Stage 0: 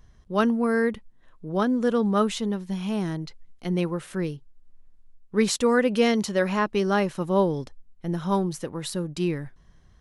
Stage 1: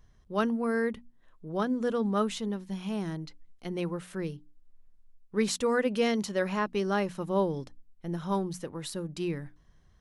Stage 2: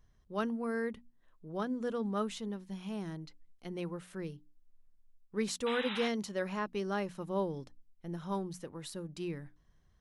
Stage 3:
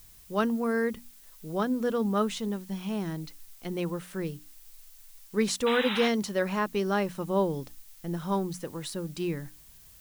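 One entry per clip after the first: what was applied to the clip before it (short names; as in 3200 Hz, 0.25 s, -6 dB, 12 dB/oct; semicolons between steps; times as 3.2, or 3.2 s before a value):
notches 60/120/180/240/300 Hz; gain -5.5 dB
painted sound noise, 5.66–6.09, 760–4000 Hz -34 dBFS; gain -6.5 dB
added noise blue -62 dBFS; gain +7.5 dB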